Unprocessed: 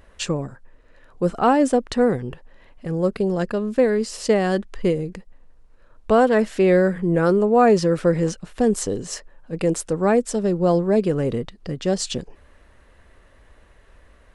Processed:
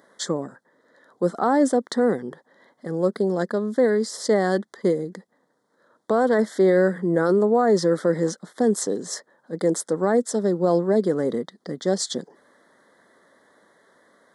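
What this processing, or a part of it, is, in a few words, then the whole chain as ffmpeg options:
PA system with an anti-feedback notch: -af "highpass=frequency=190:width=0.5412,highpass=frequency=190:width=1.3066,asuperstop=centerf=2600:order=8:qfactor=2.2,alimiter=limit=-10dB:level=0:latency=1:release=16"

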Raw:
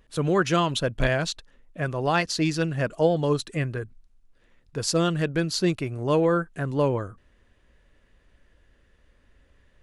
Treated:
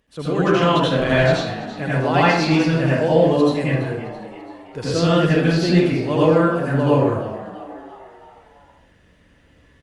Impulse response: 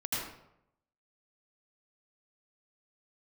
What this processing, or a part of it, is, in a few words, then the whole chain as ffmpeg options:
far-field microphone of a smart speaker: -filter_complex "[0:a]acrossover=split=4300[link_01][link_02];[link_02]acompressor=threshold=-48dB:ratio=4:attack=1:release=60[link_03];[link_01][link_03]amix=inputs=2:normalize=0,equalizer=frequency=1300:width=1.5:gain=-3,asplit=6[link_04][link_05][link_06][link_07][link_08][link_09];[link_05]adelay=334,afreqshift=85,volume=-15.5dB[link_10];[link_06]adelay=668,afreqshift=170,volume=-21.5dB[link_11];[link_07]adelay=1002,afreqshift=255,volume=-27.5dB[link_12];[link_08]adelay=1336,afreqshift=340,volume=-33.6dB[link_13];[link_09]adelay=1670,afreqshift=425,volume=-39.6dB[link_14];[link_04][link_10][link_11][link_12][link_13][link_14]amix=inputs=6:normalize=0[link_15];[1:a]atrim=start_sample=2205[link_16];[link_15][link_16]afir=irnorm=-1:irlink=0,highpass=frequency=130:poles=1,dynaudnorm=framelen=440:gausssize=3:maxgain=5dB" -ar 48000 -c:a libopus -b:a 48k

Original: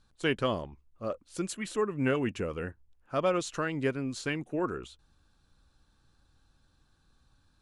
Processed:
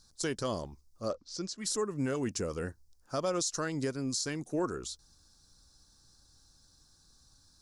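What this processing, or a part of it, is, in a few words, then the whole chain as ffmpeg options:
over-bright horn tweeter: -filter_complex "[0:a]highshelf=frequency=3800:width_type=q:width=3:gain=11.5,alimiter=limit=-22.5dB:level=0:latency=1:release=222,asettb=1/sr,asplit=3[link_01][link_02][link_03];[link_01]atrim=end=1.124[link_04];[link_02]atrim=start=1.12:end=1.58,asetpts=PTS-STARTPTS,afade=type=in:duration=0.004:curve=qsin,afade=type=out:start_time=0.456:duration=0.004:curve=qsin,lowpass=frequency=5500:width=0.5412,lowpass=frequency=5500:width=1.3066[link_05];[link_03]atrim=start=1.576[link_06];[link_04][link_05]acrossfade=duration=0.004:curve1=hsin:curve2=qsin[link_07];[link_07][link_06]acrossfade=duration=0.004:curve1=qsin:curve2=hsin"

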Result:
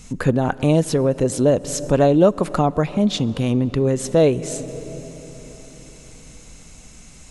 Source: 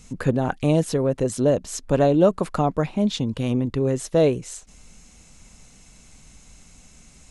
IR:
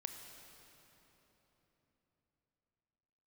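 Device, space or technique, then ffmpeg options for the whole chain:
ducked reverb: -filter_complex "[0:a]asplit=3[link_01][link_02][link_03];[1:a]atrim=start_sample=2205[link_04];[link_02][link_04]afir=irnorm=-1:irlink=0[link_05];[link_03]apad=whole_len=322358[link_06];[link_05][link_06]sidechaincompress=threshold=-26dB:ratio=8:attack=6:release=200,volume=-2dB[link_07];[link_01][link_07]amix=inputs=2:normalize=0,volume=2dB"

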